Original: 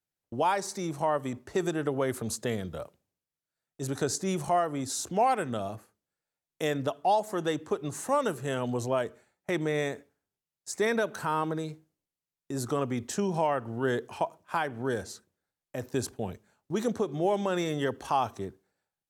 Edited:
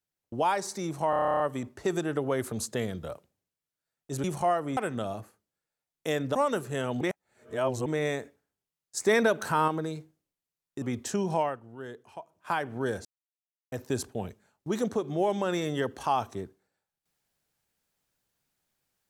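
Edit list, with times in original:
1.10 s: stutter 0.03 s, 11 plays
3.94–4.31 s: delete
4.84–5.32 s: delete
6.90–8.08 s: delete
8.74–9.59 s: reverse
10.70–11.41 s: gain +4 dB
12.55–12.86 s: delete
13.45–14.54 s: dip -13 dB, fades 0.20 s
15.09–15.76 s: mute

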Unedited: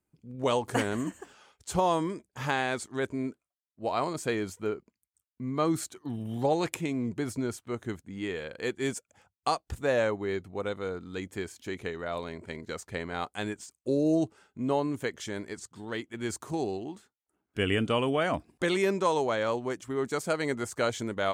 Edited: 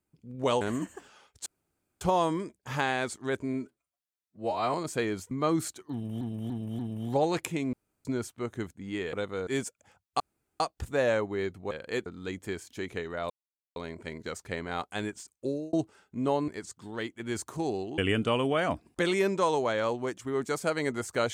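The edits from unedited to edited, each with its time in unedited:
0.61–0.86 s: delete
1.71 s: insert room tone 0.55 s
3.24–4.04 s: stretch 1.5×
4.61–5.47 s: delete
6.08–6.37 s: loop, 4 plays
7.02–7.34 s: room tone
8.42–8.77 s: swap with 10.61–10.95 s
9.50 s: insert room tone 0.40 s
12.19 s: insert silence 0.46 s
13.78–14.16 s: fade out linear
14.91–15.42 s: delete
16.92–17.61 s: delete

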